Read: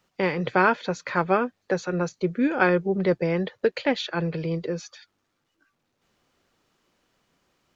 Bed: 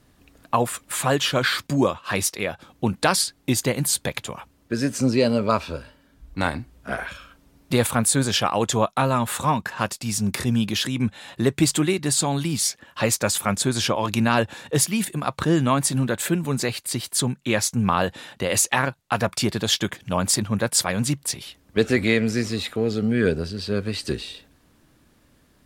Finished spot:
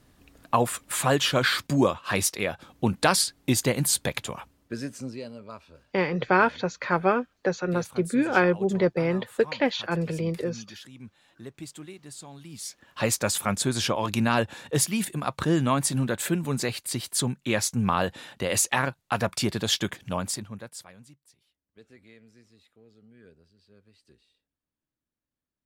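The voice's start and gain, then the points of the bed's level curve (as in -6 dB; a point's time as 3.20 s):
5.75 s, -0.5 dB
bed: 4.42 s -1.5 dB
5.34 s -21.5 dB
12.39 s -21.5 dB
13.04 s -3.5 dB
20.06 s -3.5 dB
21.23 s -33.5 dB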